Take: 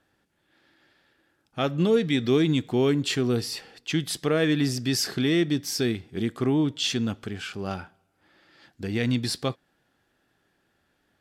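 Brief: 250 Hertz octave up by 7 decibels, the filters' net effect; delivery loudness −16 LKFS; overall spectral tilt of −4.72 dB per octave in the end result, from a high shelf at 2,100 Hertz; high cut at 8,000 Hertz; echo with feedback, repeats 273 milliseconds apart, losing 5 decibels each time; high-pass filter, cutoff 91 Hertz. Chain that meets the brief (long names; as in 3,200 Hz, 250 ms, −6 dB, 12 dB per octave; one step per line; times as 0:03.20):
high-pass filter 91 Hz
low-pass filter 8,000 Hz
parametric band 250 Hz +8.5 dB
high-shelf EQ 2,100 Hz +8.5 dB
repeating echo 273 ms, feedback 56%, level −5 dB
level +2.5 dB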